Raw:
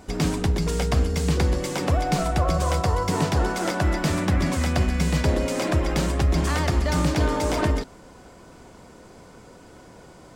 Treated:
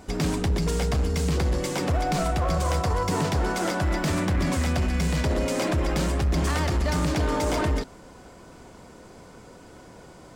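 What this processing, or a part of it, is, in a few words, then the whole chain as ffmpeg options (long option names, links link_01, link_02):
limiter into clipper: -af "alimiter=limit=-15dB:level=0:latency=1:release=10,asoftclip=type=hard:threshold=-19dB"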